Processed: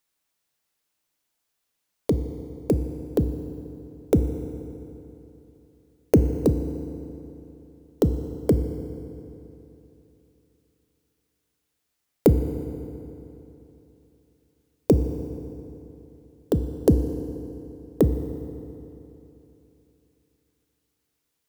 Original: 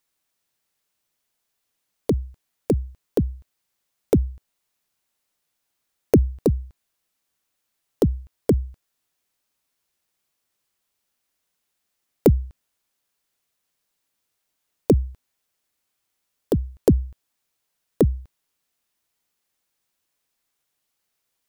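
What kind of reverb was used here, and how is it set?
FDN reverb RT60 3.2 s, high-frequency decay 0.7×, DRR 8.5 dB; trim -1.5 dB

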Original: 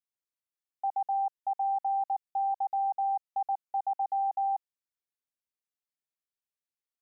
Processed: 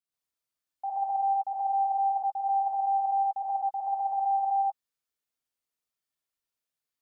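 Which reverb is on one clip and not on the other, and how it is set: gated-style reverb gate 160 ms rising, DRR -6.5 dB; trim -3 dB

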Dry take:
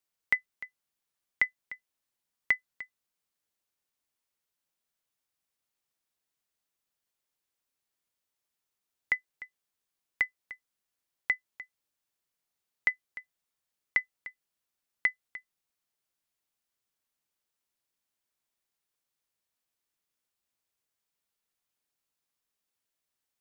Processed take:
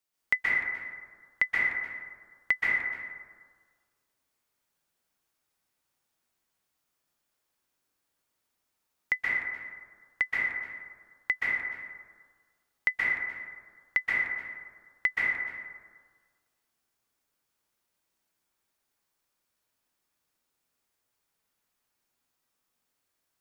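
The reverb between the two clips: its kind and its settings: plate-style reverb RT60 1.6 s, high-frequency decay 0.35×, pre-delay 115 ms, DRR -7 dB

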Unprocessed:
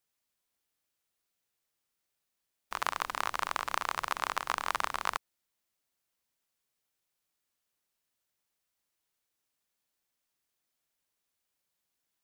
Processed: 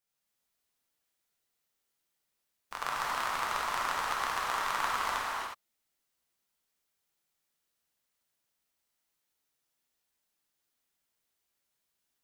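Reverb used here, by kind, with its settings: gated-style reverb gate 390 ms flat, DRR -5.5 dB; trim -5 dB

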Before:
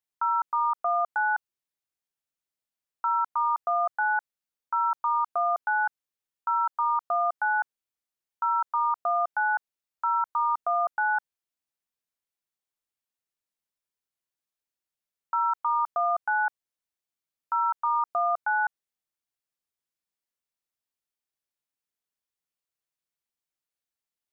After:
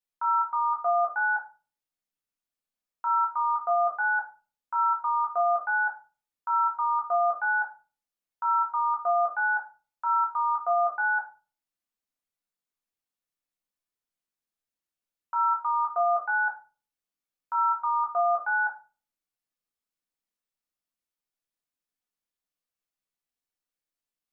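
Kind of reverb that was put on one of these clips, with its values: simulated room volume 200 m³, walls furnished, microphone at 1.9 m; trim -5 dB

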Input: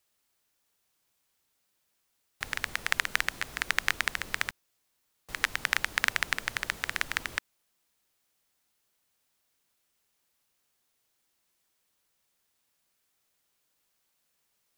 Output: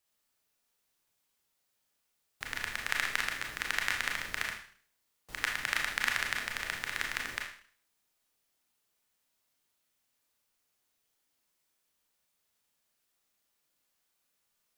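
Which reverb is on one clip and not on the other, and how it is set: Schroeder reverb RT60 0.5 s, combs from 26 ms, DRR 0.5 dB; trim -5.5 dB

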